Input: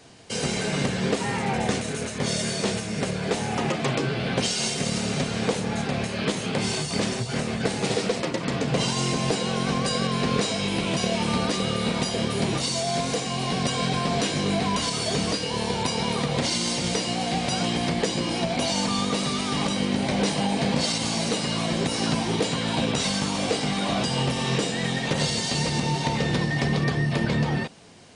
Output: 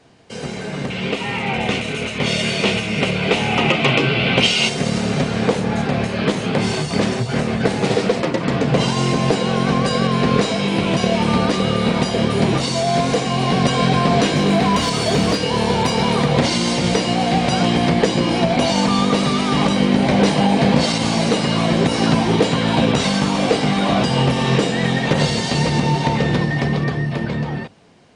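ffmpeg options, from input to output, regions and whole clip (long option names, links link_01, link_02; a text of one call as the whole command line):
ffmpeg -i in.wav -filter_complex "[0:a]asettb=1/sr,asplit=3[link_01][link_02][link_03];[link_01]atrim=end=0.904[link_04];[link_02]atrim=start=0.9:end=4.69,asetpts=PTS-STARTPTS,afade=type=in:duration=0.004:curve=qsin,afade=type=out:start_time=3.786:duration=0.004:curve=qsin,equalizer=frequency=2700:width=1.4:gain=13,bandreject=frequency=1700:width=7.3[link_05];[link_03]atrim=start=4.686[link_06];[link_04][link_05]acrossfade=duration=0.004:curve1=hsin:curve2=qsin[link_07];[link_07][link_06]acrossfade=duration=0.004:curve1=qsin:curve2=hsin,asettb=1/sr,asplit=3[link_08][link_09][link_10];[link_08]atrim=end=14.364[link_11];[link_09]atrim=start=14.36:end=16.32,asetpts=PTS-STARTPTS,afade=type=in:duration=0.004:curve=qsin,afade=type=out:start_time=1.956:duration=0.004:curve=qsin,highshelf=frequency=6300:gain=2.5,asoftclip=type=hard:threshold=-19.5dB[link_12];[link_10]atrim=start=16.316[link_13];[link_11][link_12]acrossfade=duration=0.004:curve1=hsin:curve2=qsin[link_14];[link_14][link_13]acrossfade=duration=0.004:curve1=qsin:curve2=hsin,highshelf=frequency=4400:gain=-12,bandreject=frequency=50:width_type=h:width=6,bandreject=frequency=100:width_type=h:width=6,dynaudnorm=framelen=170:gausssize=21:maxgain=11.5dB" out.wav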